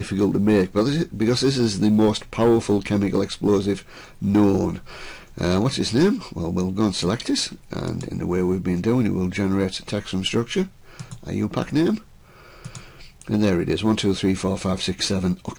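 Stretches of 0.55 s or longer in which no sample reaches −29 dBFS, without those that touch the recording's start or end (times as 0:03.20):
0:11.98–0:12.66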